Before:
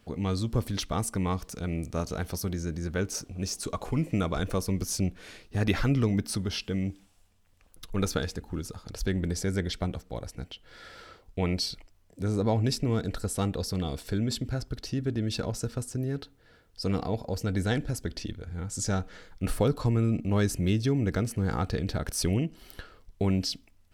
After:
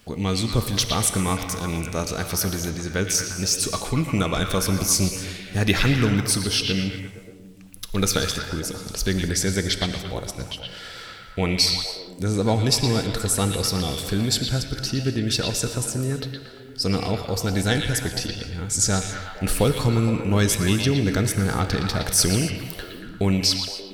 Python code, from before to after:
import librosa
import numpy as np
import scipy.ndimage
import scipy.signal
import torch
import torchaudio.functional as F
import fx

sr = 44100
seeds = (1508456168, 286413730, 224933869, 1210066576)

y = fx.high_shelf(x, sr, hz=2500.0, db=9.5)
y = fx.echo_stepped(y, sr, ms=116, hz=2900.0, octaves=-0.7, feedback_pct=70, wet_db=-1.5)
y = fx.rev_gated(y, sr, seeds[0], gate_ms=300, shape='flat', drr_db=9.0)
y = y * librosa.db_to_amplitude(4.5)